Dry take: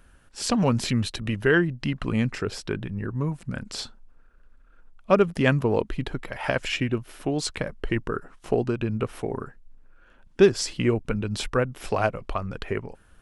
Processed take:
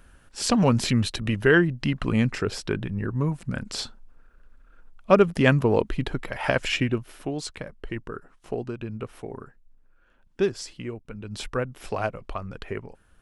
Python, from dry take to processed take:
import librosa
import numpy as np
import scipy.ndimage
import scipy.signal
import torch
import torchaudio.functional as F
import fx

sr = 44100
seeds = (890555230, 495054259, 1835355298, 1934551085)

y = fx.gain(x, sr, db=fx.line((6.81, 2.0), (7.58, -7.0), (10.49, -7.0), (11.06, -14.0), (11.42, -4.0)))